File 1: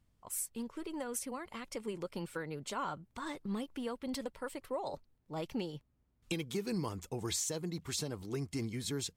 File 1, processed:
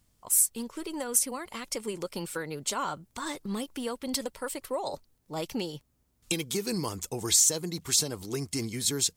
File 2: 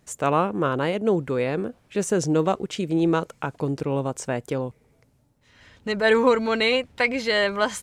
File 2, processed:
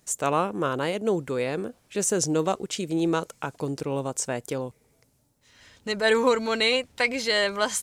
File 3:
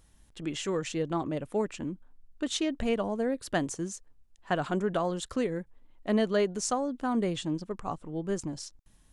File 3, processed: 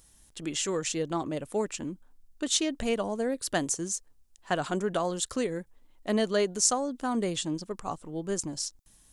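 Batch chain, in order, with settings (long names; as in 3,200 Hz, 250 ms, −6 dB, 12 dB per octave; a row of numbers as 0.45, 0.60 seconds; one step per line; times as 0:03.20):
bass and treble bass −3 dB, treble +10 dB
normalise the peak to −9 dBFS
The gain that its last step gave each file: +5.5, −2.5, +0.5 decibels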